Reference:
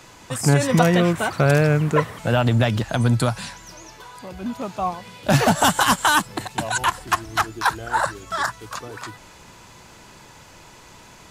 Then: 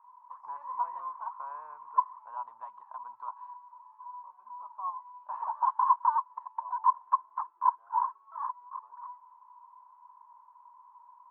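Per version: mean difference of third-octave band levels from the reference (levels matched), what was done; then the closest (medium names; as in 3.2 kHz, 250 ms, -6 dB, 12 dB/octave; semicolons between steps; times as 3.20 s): 23.0 dB: Butterworth band-pass 1 kHz, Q 7.6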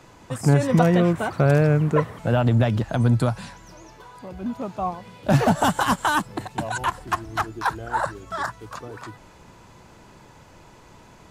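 4.0 dB: tilt shelf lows +5 dB, about 1.5 kHz; trim -5 dB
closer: second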